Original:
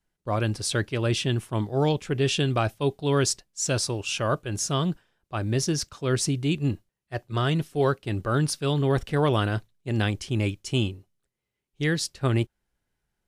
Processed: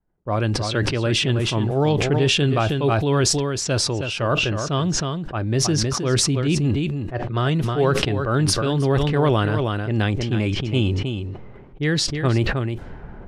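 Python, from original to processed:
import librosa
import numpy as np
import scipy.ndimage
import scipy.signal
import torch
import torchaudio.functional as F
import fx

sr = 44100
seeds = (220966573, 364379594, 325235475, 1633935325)

p1 = fx.env_lowpass(x, sr, base_hz=1000.0, full_db=-20.5)
p2 = fx.lowpass(p1, sr, hz=3300.0, slope=6)
p3 = p2 + fx.echo_single(p2, sr, ms=316, db=-9.5, dry=0)
p4 = fx.sustainer(p3, sr, db_per_s=23.0)
y = p4 * librosa.db_to_amplitude(3.5)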